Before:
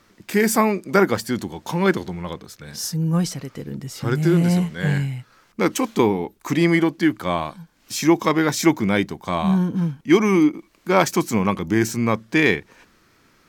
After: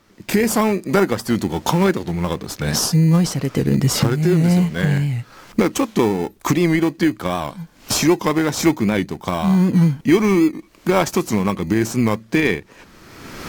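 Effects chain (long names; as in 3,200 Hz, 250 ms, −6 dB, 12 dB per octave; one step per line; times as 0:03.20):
camcorder AGC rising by 29 dB per second
in parallel at −9 dB: sample-rate reduction 2,200 Hz, jitter 0%
on the sum: wow of a warped record 78 rpm, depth 100 cents
level −2 dB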